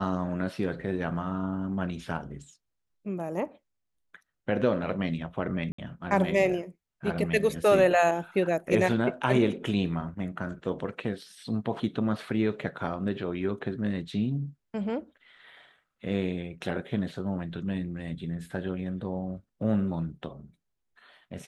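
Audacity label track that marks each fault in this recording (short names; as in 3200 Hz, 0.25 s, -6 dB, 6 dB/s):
5.720000	5.780000	gap 64 ms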